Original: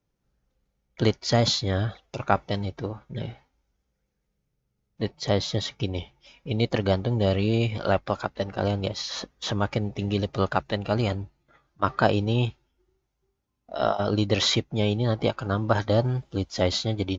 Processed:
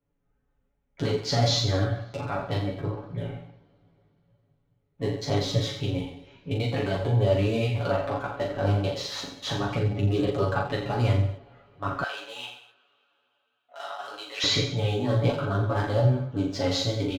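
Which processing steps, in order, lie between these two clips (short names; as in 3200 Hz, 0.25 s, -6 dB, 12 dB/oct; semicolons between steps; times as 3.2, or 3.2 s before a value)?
Wiener smoothing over 9 samples; limiter -15 dBFS, peak gain reduction 10.5 dB; comb 7.1 ms, depth 75%; reverse bouncing-ball echo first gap 40 ms, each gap 1.1×, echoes 5; reverb, pre-delay 3 ms, DRR 11 dB; chorus voices 6, 0.81 Hz, delay 15 ms, depth 4.5 ms; 12.04–14.44 HPF 1300 Hz 12 dB/oct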